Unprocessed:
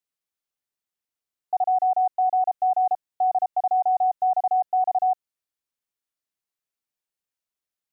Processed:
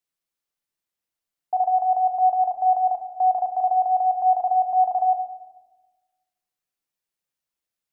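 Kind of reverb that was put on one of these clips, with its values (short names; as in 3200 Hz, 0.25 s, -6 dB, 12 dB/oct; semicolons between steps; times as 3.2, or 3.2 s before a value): shoebox room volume 750 m³, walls mixed, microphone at 0.79 m; gain +1 dB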